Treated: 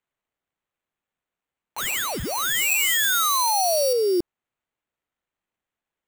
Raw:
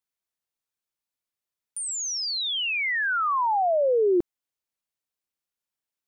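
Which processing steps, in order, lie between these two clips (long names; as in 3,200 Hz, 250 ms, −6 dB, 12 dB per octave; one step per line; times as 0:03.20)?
sample-rate reduction 5,100 Hz, jitter 0%
0:01.78–0:03.93: high-shelf EQ 3,700 Hz +10.5 dB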